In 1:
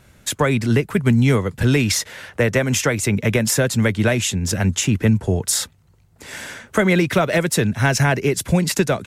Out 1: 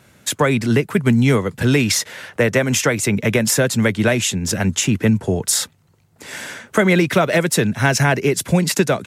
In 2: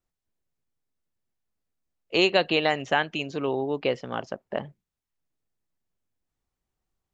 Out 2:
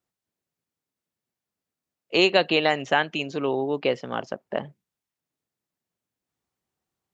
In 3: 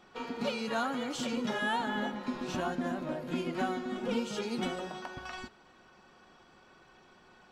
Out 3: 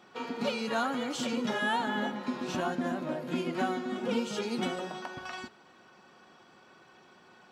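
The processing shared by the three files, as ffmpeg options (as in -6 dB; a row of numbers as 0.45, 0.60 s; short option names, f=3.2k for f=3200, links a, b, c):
-af "highpass=120,volume=2dB"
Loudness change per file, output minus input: +1.5, +2.0, +2.0 LU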